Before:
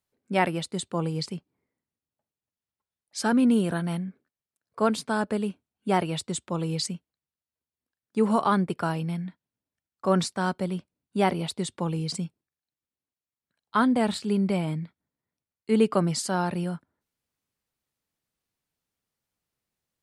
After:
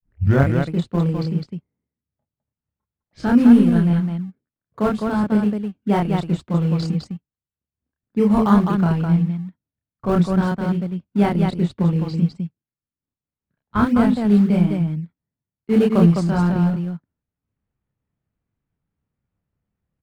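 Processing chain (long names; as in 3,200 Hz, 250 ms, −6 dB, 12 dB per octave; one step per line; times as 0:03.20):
turntable start at the beginning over 0.53 s
low-pass that shuts in the quiet parts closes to 2,000 Hz, open at −20 dBFS
in parallel at −12 dB: sample-and-hold swept by an LFO 31×, swing 100% 3.5 Hz
on the sum: transient designer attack 0 dB, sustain −7 dB
bass and treble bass +11 dB, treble −7 dB
on a send: loudspeakers that aren't time-aligned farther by 10 metres −2 dB, 71 metres −4 dB
on the sum: level −1 dB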